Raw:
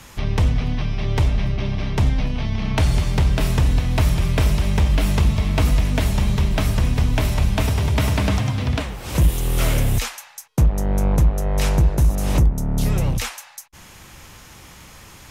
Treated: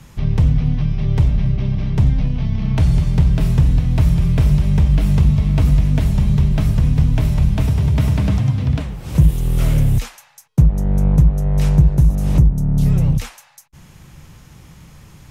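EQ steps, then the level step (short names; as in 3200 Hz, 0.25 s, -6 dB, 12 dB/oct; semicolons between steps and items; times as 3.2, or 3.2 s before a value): bell 150 Hz +9 dB 0.46 oct; low shelf 350 Hz +10 dB; -7.0 dB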